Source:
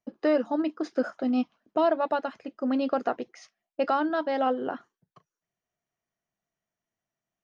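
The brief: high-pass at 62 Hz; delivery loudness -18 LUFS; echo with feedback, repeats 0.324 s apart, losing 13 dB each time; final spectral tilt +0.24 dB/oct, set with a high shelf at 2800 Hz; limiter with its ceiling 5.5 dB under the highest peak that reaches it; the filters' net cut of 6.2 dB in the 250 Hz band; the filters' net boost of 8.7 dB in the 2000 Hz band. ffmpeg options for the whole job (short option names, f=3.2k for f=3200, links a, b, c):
-af "highpass=62,equalizer=f=250:t=o:g=-7.5,equalizer=f=2k:t=o:g=9,highshelf=f=2.8k:g=8.5,alimiter=limit=-18dB:level=0:latency=1,aecho=1:1:324|648|972:0.224|0.0493|0.0108,volume=12dB"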